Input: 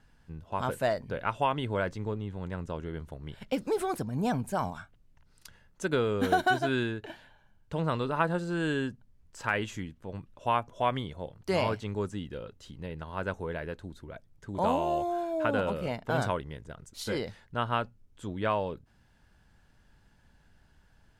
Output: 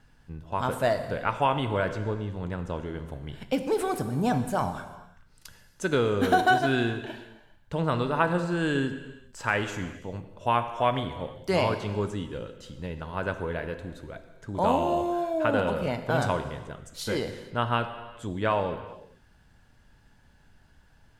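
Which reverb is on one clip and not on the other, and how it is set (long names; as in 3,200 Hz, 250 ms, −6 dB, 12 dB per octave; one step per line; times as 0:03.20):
reverb whose tail is shaped and stops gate 470 ms falling, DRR 8 dB
level +3 dB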